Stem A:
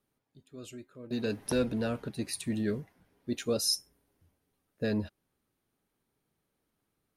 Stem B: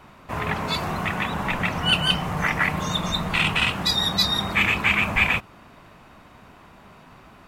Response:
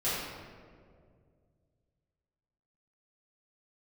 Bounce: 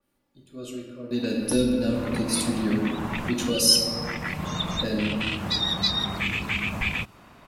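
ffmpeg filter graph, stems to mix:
-filter_complex "[0:a]aecho=1:1:3.5:0.55,volume=1.12,asplit=3[s0][s1][s2];[s1]volume=0.562[s3];[1:a]acrossover=split=5000[s4][s5];[s5]acompressor=threshold=0.00282:ratio=4:attack=1:release=60[s6];[s4][s6]amix=inputs=2:normalize=0,adelay=1650,volume=0.75[s7];[s2]apad=whole_len=402590[s8];[s7][s8]sidechaincompress=threshold=0.0282:ratio=3:attack=8.2:release=906[s9];[2:a]atrim=start_sample=2205[s10];[s3][s10]afir=irnorm=-1:irlink=0[s11];[s0][s9][s11]amix=inputs=3:normalize=0,acrossover=split=380|3000[s12][s13][s14];[s13]acompressor=threshold=0.0251:ratio=6[s15];[s12][s15][s14]amix=inputs=3:normalize=0,adynamicequalizer=threshold=0.0126:dfrequency=3800:dqfactor=0.7:tfrequency=3800:tqfactor=0.7:attack=5:release=100:ratio=0.375:range=2.5:mode=boostabove:tftype=highshelf"

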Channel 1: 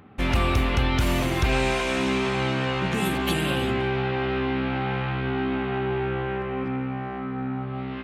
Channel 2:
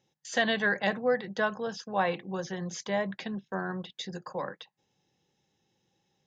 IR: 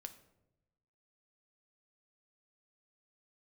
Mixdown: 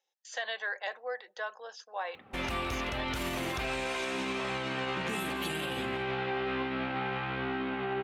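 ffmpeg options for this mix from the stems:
-filter_complex "[0:a]flanger=delay=1.5:depth=1.1:regen=85:speed=1.3:shape=sinusoidal,adelay=2150,volume=0.891,asplit=3[s0][s1][s2];[s1]volume=0.631[s3];[s2]volume=0.211[s4];[1:a]highpass=f=500:w=0.5412,highpass=f=500:w=1.3066,volume=0.473,asplit=2[s5][s6];[s6]volume=0.0708[s7];[2:a]atrim=start_sample=2205[s8];[s3][s7]amix=inputs=2:normalize=0[s9];[s9][s8]afir=irnorm=-1:irlink=0[s10];[s4]aecho=0:1:164:1[s11];[s0][s5][s10][s11]amix=inputs=4:normalize=0,lowshelf=f=220:g=-10.5,alimiter=level_in=1.12:limit=0.0631:level=0:latency=1,volume=0.891"

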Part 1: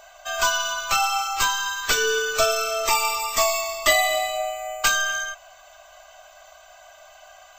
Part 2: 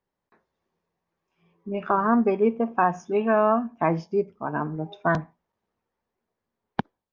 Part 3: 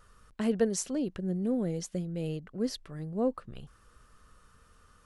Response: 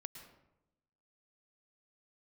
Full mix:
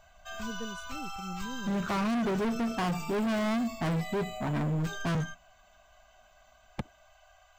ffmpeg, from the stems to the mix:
-filter_complex "[0:a]equalizer=f=240:w=1.2:g=-14.5,acontrast=85,alimiter=limit=0.211:level=0:latency=1:release=20,volume=0.112[s0];[1:a]volume=0.75[s1];[2:a]volume=0.119[s2];[s0][s1][s2]amix=inputs=3:normalize=0,bass=f=250:g=14,treble=f=4000:g=-5,asoftclip=type=hard:threshold=0.0422"

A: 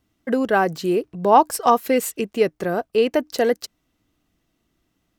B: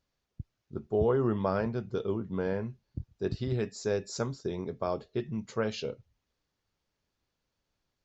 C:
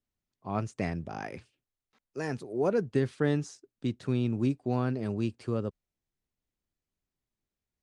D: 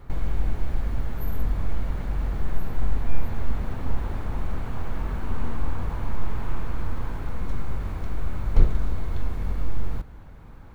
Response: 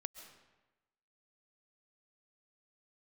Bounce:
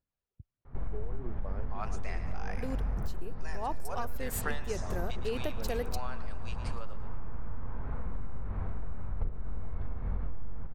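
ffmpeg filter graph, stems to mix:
-filter_complex "[0:a]highshelf=f=6800:g=11,dynaudnorm=f=890:g=3:m=3.76,adelay=2300,volume=0.2[s0];[1:a]lowpass=f=1600:p=1,aphaser=in_gain=1:out_gain=1:delay=2.6:decay=0.41:speed=1.6:type=triangular,volume=0.282,asplit=2[s1][s2];[2:a]dynaudnorm=f=110:g=13:m=1.78,highpass=f=710:w=0.5412,highpass=f=710:w=1.3066,adelay=1250,volume=1.12,asplit=2[s3][s4];[s4]volume=0.237[s5];[3:a]lowpass=1600,equalizer=f=320:t=o:w=0.23:g=-8.5,dynaudnorm=f=100:g=3:m=1.88,adelay=650,volume=0.422,asplit=2[s6][s7];[s7]volume=0.224[s8];[s2]apad=whole_len=329986[s9];[s0][s9]sidechaingate=range=0.0224:threshold=0.00112:ratio=16:detection=peak[s10];[s5][s8]amix=inputs=2:normalize=0,aecho=0:1:113|226|339|452|565|678|791|904:1|0.53|0.281|0.149|0.0789|0.0418|0.0222|0.0117[s11];[s10][s1][s3][s6][s11]amix=inputs=5:normalize=0,acompressor=threshold=0.0447:ratio=6"

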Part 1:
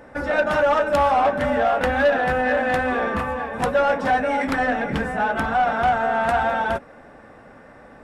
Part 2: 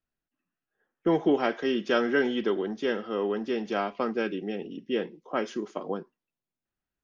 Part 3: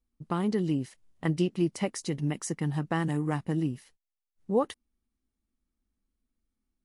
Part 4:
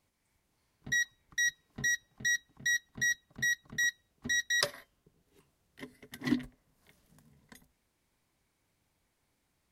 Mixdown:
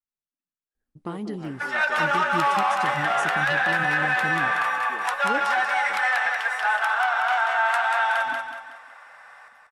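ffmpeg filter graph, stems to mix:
-filter_complex "[0:a]highpass=f=930:w=0.5412,highpass=f=930:w=1.3066,adelay=1450,volume=1.41,asplit=2[s0][s1];[s1]volume=0.631[s2];[1:a]volume=0.15[s3];[2:a]flanger=delay=4.5:depth=6:regen=64:speed=1.9:shape=triangular,adelay=750,volume=1,asplit=2[s4][s5];[s5]volume=0.119[s6];[3:a]adelay=2000,volume=0.112,asplit=2[s7][s8];[s8]volume=0.299[s9];[s2][s6][s9]amix=inputs=3:normalize=0,aecho=0:1:186|372|558|744|930|1116:1|0.4|0.16|0.064|0.0256|0.0102[s10];[s0][s3][s4][s7][s10]amix=inputs=5:normalize=0,alimiter=limit=0.224:level=0:latency=1:release=56"

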